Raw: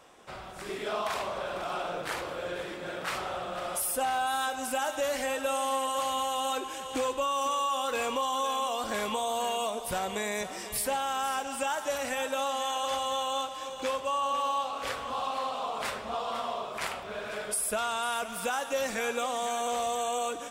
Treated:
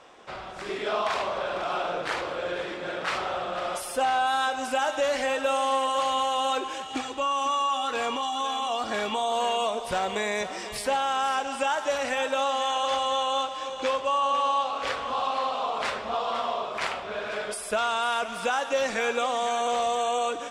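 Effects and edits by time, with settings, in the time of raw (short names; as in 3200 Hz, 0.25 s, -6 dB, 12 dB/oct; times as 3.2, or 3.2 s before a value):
6.82–9.32 notch comb 520 Hz
whole clip: LPF 5600 Hz 12 dB/oct; tone controls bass -5 dB, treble 0 dB; gain +5 dB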